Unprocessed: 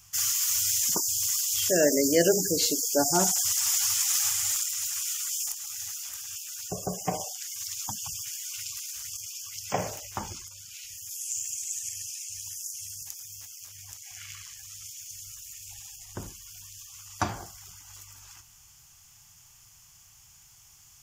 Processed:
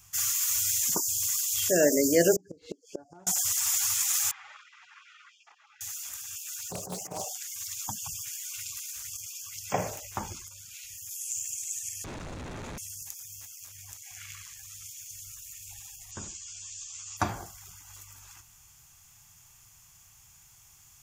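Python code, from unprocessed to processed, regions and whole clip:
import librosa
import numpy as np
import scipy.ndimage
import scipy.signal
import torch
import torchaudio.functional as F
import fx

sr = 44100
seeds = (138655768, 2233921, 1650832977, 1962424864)

y = fx.chain(x, sr, fx.lowpass(hz=2200.0, slope=12),
    fx.gate_flip(shuts_db=-22.0, range_db=-27), at=(2.36, 3.27))
y = fx.chain(y, sr, fx.bandpass_edges(low_hz=660.0, high_hz=2000.0),
    fx.air_absorb(metres=180.0), at=(4.31, 5.81))
y = fx.chain(y, sr, fx.highpass(hz=80.0, slope=12),
    fx.over_compress(threshold_db=-34.0, ratio=-0.5),
    fx.doppler_dist(depth_ms=0.64), at=(6.45, 7.38))
y = fx.chain(y, sr, fx.schmitt(flips_db=-34.0),
    fx.air_absorb(metres=67.0), at=(12.04, 12.78))
y = fx.chain(y, sr, fx.ellip_lowpass(hz=7700.0, order=4, stop_db=40),
    fx.high_shelf(hz=2300.0, db=12.0),
    fx.ensemble(), at=(16.11, 17.17))
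y = fx.peak_eq(y, sr, hz=5200.0, db=-5.0, octaves=0.5)
y = fx.notch(y, sr, hz=3000.0, q=16.0)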